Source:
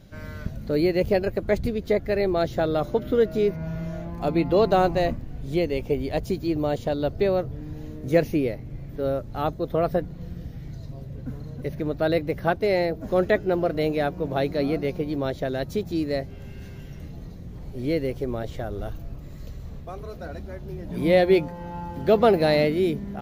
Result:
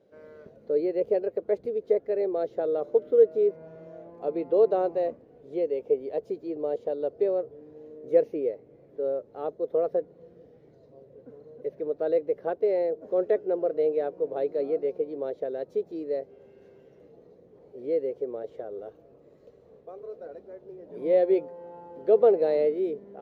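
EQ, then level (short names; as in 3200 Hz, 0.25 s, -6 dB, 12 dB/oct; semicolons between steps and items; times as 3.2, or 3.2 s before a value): band-pass 460 Hz, Q 4.6; tilt +2.5 dB/oct; +5.5 dB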